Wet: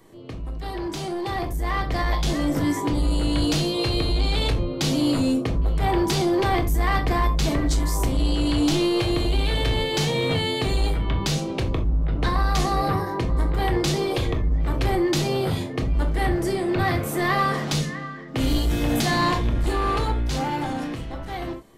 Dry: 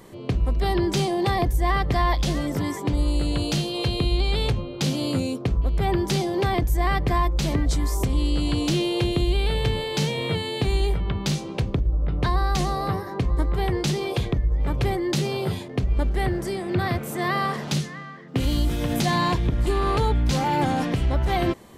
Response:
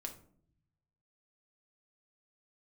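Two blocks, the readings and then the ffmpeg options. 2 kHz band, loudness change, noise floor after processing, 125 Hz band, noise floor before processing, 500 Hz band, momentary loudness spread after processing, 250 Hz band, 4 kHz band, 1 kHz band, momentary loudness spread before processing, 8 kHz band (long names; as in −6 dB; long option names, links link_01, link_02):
+2.0 dB, +0.5 dB, −33 dBFS, −0.5 dB, −36 dBFS, +1.0 dB, 7 LU, +2.0 dB, +2.0 dB, +0.5 dB, 4 LU, +2.0 dB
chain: -filter_complex "[0:a]acrossover=split=660|830[link_01][link_02][link_03];[link_01]asoftclip=type=hard:threshold=-24dB[link_04];[link_04][link_02][link_03]amix=inputs=3:normalize=0[link_05];[1:a]atrim=start_sample=2205,afade=type=out:start_time=0.14:duration=0.01,atrim=end_sample=6615[link_06];[link_05][link_06]afir=irnorm=-1:irlink=0,asoftclip=type=tanh:threshold=-20dB,dynaudnorm=framelen=210:gausssize=17:maxgain=10dB,volume=-3dB"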